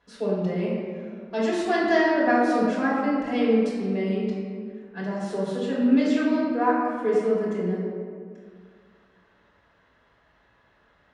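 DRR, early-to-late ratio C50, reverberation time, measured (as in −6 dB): −10.0 dB, −0.5 dB, 2.1 s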